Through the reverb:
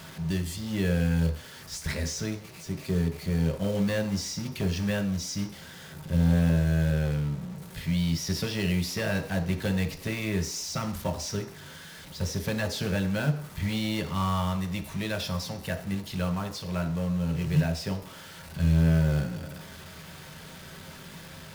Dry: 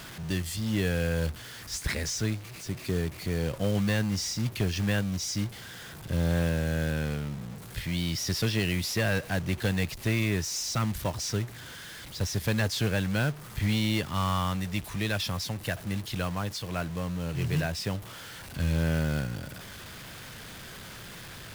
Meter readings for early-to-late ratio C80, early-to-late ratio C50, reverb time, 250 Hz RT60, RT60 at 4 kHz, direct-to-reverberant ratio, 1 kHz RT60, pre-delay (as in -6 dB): 14.0 dB, 11.0 dB, 0.55 s, 0.50 s, 0.60 s, 3.0 dB, 0.55 s, 3 ms